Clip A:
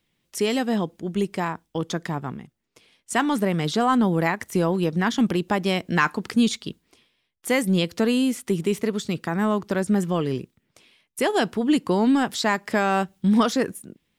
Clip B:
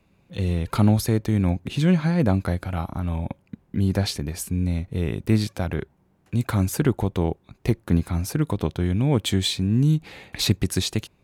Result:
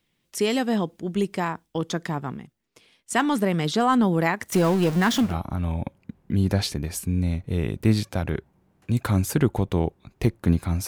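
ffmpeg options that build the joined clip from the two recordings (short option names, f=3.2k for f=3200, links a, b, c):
-filter_complex "[0:a]asettb=1/sr,asplit=3[a][b][c];[a]atrim=end=4.524[d];[b]atrim=start=4.52:end=5.37,asetpts=PTS-STARTPTS,afade=t=in:d=0.004:c=qsin,afade=t=out:st=0.846:d=0.004:c=qsin,aeval=exprs='val(0)+0.5*0.0501*sgn(val(0))':c=same[e];[c]atrim=start=5.366[f];[d][e]acrossfade=d=0.004:c1=hsin:c2=qsin[g];[g][f]acrossfade=d=0.004:c1=qsin:c2=hsin,apad=whole_dur=10.87,atrim=end=10.87,atrim=end=5.37,asetpts=PTS-STARTPTS[h];[1:a]atrim=start=2.61:end=8.31,asetpts=PTS-STARTPTS[i];[h][i]acrossfade=d=0.2:c1=tri:c2=tri"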